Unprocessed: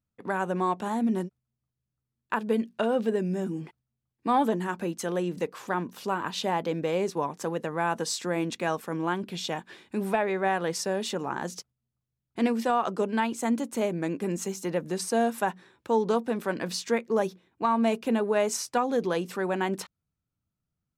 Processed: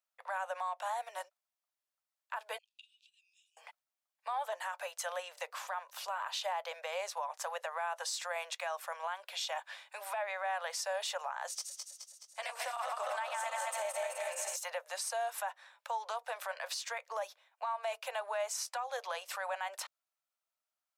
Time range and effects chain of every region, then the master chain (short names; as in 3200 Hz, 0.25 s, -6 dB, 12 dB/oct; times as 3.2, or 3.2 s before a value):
2.58–3.57 compressor 16:1, threshold -36 dBFS + rippled Chebyshev high-pass 2500 Hz, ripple 3 dB + air absorption 92 m
11.49–14.56 regenerating reverse delay 0.106 s, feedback 75%, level -3 dB + bell 8700 Hz +8 dB 0.21 oct + notch comb 240 Hz
whole clip: steep high-pass 570 Hz 72 dB/oct; compressor, threshold -31 dBFS; limiter -29 dBFS; gain +1 dB